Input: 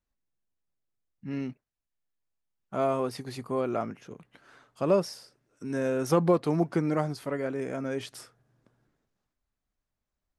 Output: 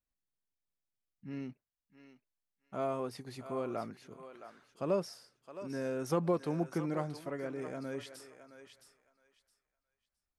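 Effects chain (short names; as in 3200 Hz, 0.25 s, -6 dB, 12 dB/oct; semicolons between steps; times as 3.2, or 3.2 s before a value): thinning echo 0.666 s, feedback 21%, high-pass 740 Hz, level -9 dB; gain -8 dB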